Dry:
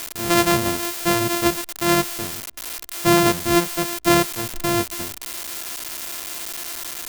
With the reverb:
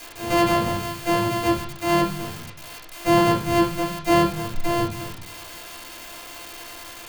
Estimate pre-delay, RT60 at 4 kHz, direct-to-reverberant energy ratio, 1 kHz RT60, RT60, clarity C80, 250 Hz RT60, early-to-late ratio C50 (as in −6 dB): 4 ms, 0.40 s, −5.5 dB, 0.50 s, 0.50 s, 11.5 dB, 0.80 s, 6.0 dB